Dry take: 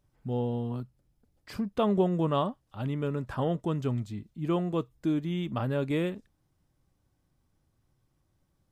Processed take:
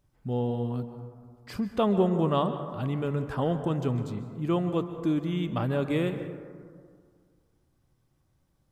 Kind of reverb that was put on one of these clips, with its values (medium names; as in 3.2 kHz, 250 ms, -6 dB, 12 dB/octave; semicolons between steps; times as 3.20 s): plate-style reverb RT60 2 s, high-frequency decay 0.3×, pre-delay 120 ms, DRR 9 dB; trim +1.5 dB